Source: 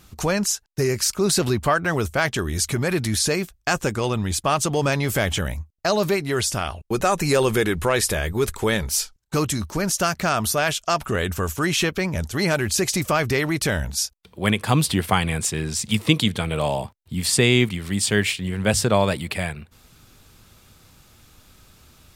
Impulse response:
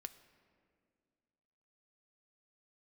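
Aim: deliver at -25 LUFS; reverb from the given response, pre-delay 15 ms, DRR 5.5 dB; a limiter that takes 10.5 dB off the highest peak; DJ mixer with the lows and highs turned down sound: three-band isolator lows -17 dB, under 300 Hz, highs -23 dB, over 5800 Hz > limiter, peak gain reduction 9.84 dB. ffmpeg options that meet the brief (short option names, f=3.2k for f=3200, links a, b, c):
-filter_complex "[0:a]alimiter=limit=-13.5dB:level=0:latency=1,asplit=2[a][b];[1:a]atrim=start_sample=2205,adelay=15[c];[b][c]afir=irnorm=-1:irlink=0,volume=-0.5dB[d];[a][d]amix=inputs=2:normalize=0,acrossover=split=300 5800:gain=0.141 1 0.0708[e][f][g];[e][f][g]amix=inputs=3:normalize=0,volume=4dB,alimiter=limit=-14dB:level=0:latency=1"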